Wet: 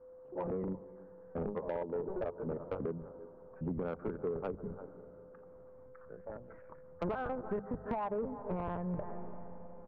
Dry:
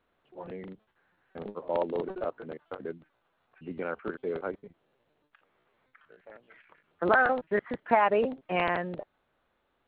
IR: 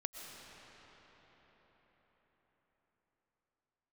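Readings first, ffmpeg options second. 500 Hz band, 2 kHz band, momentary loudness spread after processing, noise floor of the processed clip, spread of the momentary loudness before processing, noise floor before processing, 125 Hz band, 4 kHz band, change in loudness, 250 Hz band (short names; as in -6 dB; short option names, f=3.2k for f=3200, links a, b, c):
-7.0 dB, -20.5 dB, 17 LU, -55 dBFS, 20 LU, -75 dBFS, +2.5 dB, under -15 dB, -10.0 dB, -2.5 dB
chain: -filter_complex "[0:a]bandreject=f=50:t=h:w=6,bandreject=f=100:t=h:w=6,bandreject=f=150:t=h:w=6,bandreject=f=200:t=h:w=6,asplit=2[a][b];[b]aeval=exprs='val(0)*gte(abs(val(0)),0.0596)':c=same,volume=-8dB[c];[a][c]amix=inputs=2:normalize=0,asplit=2[d][e];[e]adelay=340,highpass=300,lowpass=3.4k,asoftclip=type=hard:threshold=-16.5dB,volume=-22dB[f];[d][f]amix=inputs=2:normalize=0,asplit=2[g][h];[1:a]atrim=start_sample=2205,asetrate=66150,aresample=44100,adelay=139[i];[h][i]afir=irnorm=-1:irlink=0,volume=-17dB[j];[g][j]amix=inputs=2:normalize=0,aeval=exprs='val(0)+0.00112*sin(2*PI*510*n/s)':c=same,asubboost=boost=5:cutoff=160,lowpass=f=1.1k:w=0.5412,lowpass=f=1.1k:w=1.3066,adynamicequalizer=threshold=0.00562:dfrequency=440:dqfactor=7.5:tfrequency=440:tqfactor=7.5:attack=5:release=100:ratio=0.375:range=3:mode=boostabove:tftype=bell,acompressor=threshold=-38dB:ratio=20,bandreject=f=730:w=14,acontrast=53,asoftclip=type=tanh:threshold=-30dB,volume=2dB"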